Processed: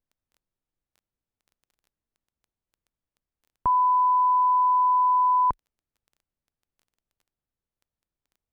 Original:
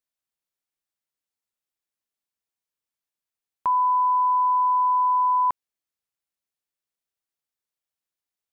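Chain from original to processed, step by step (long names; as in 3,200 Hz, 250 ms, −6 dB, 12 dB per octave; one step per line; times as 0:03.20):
spectral tilt −4.5 dB per octave
surface crackle 10 per second −48 dBFS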